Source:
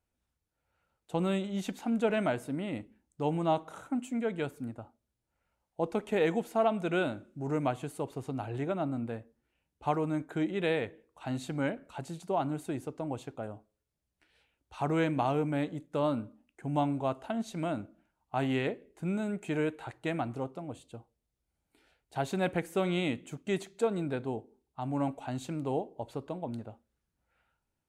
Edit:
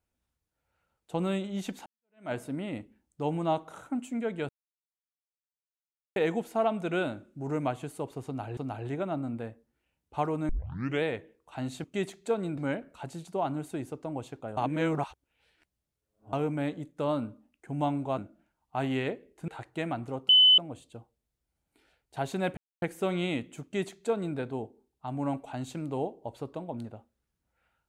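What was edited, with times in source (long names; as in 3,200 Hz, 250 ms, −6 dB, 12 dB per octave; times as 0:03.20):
0:01.86–0:02.32: fade in exponential
0:04.49–0:06.16: silence
0:08.26–0:08.57: repeat, 2 plays
0:10.18: tape start 0.54 s
0:13.52–0:15.28: reverse
0:17.13–0:17.77: remove
0:19.07–0:19.76: remove
0:20.57: insert tone 3,020 Hz −15 dBFS 0.29 s
0:22.56: splice in silence 0.25 s
0:23.37–0:24.11: duplicate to 0:11.53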